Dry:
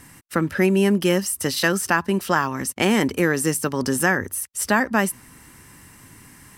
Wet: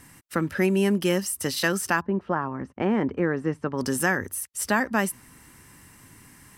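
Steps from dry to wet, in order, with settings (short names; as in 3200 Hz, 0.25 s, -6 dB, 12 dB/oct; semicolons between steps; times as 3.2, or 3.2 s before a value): 2–3.77 LPF 1000 Hz -> 1700 Hz 12 dB/oct; gain -4 dB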